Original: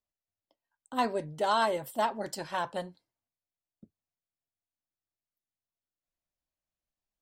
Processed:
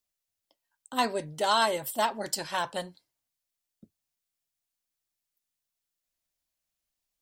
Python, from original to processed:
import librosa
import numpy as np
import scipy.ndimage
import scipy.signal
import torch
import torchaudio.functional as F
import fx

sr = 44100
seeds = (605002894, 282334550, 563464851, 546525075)

y = fx.high_shelf(x, sr, hz=2200.0, db=10.5)